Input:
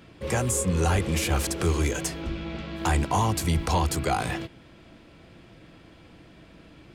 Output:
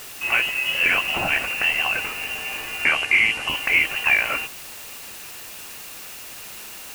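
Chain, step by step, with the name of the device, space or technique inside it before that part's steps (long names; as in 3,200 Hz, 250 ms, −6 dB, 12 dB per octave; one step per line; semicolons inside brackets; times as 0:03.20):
scrambled radio voice (band-pass filter 340–3,100 Hz; voice inversion scrambler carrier 3,100 Hz; white noise bed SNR 14 dB)
0:02.84–0:03.49: low-pass filter 11,000 Hz 24 dB per octave
level +8.5 dB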